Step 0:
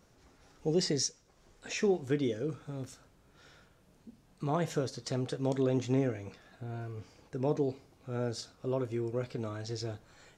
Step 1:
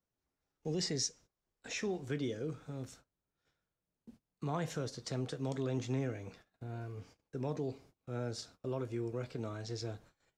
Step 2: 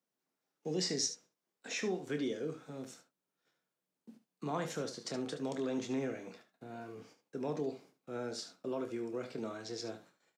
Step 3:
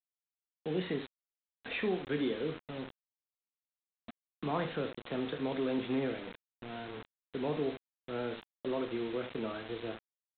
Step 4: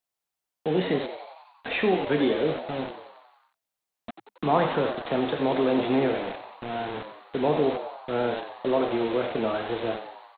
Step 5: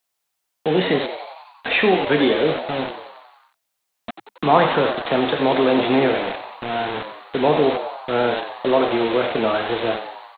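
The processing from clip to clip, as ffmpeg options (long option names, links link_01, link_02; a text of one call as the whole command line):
ffmpeg -i in.wav -filter_complex "[0:a]agate=range=-24dB:threshold=-54dB:ratio=16:detection=peak,acrossover=split=190|860[link_01][link_02][link_03];[link_02]alimiter=level_in=5.5dB:limit=-24dB:level=0:latency=1,volume=-5.5dB[link_04];[link_01][link_04][link_03]amix=inputs=3:normalize=0,volume=-3dB" out.wav
ffmpeg -i in.wav -filter_complex "[0:a]highpass=frequency=180:width=0.5412,highpass=frequency=180:width=1.3066,asplit=2[link_01][link_02];[link_02]aecho=0:1:27|73:0.299|0.282[link_03];[link_01][link_03]amix=inputs=2:normalize=0,volume=1dB" out.wav
ffmpeg -i in.wav -af "aresample=8000,acrusher=bits=7:mix=0:aa=0.000001,aresample=44100,dynaudnorm=framelen=280:gausssize=5:maxgain=3dB" out.wav
ffmpeg -i in.wav -filter_complex "[0:a]equalizer=frequency=740:width=1.4:gain=6.5,asplit=2[link_01][link_02];[link_02]asplit=7[link_03][link_04][link_05][link_06][link_07][link_08][link_09];[link_03]adelay=91,afreqshift=95,volume=-10.5dB[link_10];[link_04]adelay=182,afreqshift=190,volume=-14.8dB[link_11];[link_05]adelay=273,afreqshift=285,volume=-19.1dB[link_12];[link_06]adelay=364,afreqshift=380,volume=-23.4dB[link_13];[link_07]adelay=455,afreqshift=475,volume=-27.7dB[link_14];[link_08]adelay=546,afreqshift=570,volume=-32dB[link_15];[link_09]adelay=637,afreqshift=665,volume=-36.3dB[link_16];[link_10][link_11][link_12][link_13][link_14][link_15][link_16]amix=inputs=7:normalize=0[link_17];[link_01][link_17]amix=inputs=2:normalize=0,volume=8dB" out.wav
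ffmpeg -i in.wav -af "tiltshelf=frequency=690:gain=-3,volume=7.5dB" out.wav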